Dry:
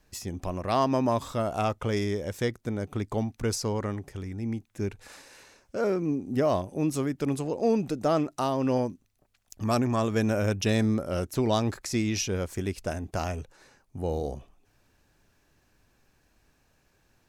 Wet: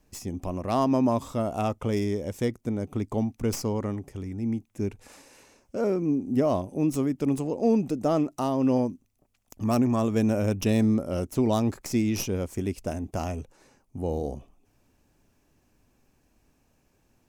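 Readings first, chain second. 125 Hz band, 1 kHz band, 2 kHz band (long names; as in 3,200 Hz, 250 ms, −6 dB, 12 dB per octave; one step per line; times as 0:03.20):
+0.5 dB, −1.0 dB, −4.5 dB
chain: stylus tracing distortion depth 0.048 ms
graphic EQ with 15 bands 250 Hz +5 dB, 1,600 Hz −7 dB, 4,000 Hz −6 dB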